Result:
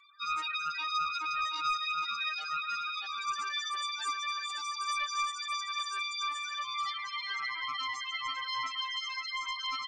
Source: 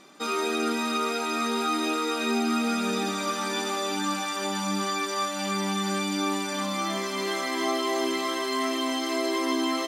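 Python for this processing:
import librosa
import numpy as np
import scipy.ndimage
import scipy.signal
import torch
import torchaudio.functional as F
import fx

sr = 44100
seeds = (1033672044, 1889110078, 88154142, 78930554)

y = scipy.signal.sosfilt(scipy.signal.butter(4, 1100.0, 'highpass', fs=sr, output='sos'), x)
y = fx.spec_topn(y, sr, count=8)
y = fx.doppler_dist(y, sr, depth_ms=0.28)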